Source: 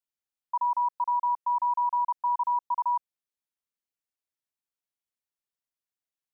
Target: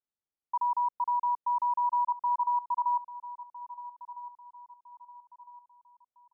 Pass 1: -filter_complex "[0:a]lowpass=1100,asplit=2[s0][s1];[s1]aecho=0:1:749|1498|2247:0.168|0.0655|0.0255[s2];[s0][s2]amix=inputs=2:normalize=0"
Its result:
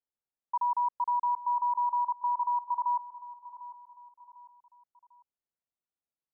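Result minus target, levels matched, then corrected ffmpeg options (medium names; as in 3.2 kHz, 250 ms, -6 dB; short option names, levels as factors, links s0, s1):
echo 558 ms early
-filter_complex "[0:a]lowpass=1100,asplit=2[s0][s1];[s1]aecho=0:1:1307|2614|3921:0.168|0.0655|0.0255[s2];[s0][s2]amix=inputs=2:normalize=0"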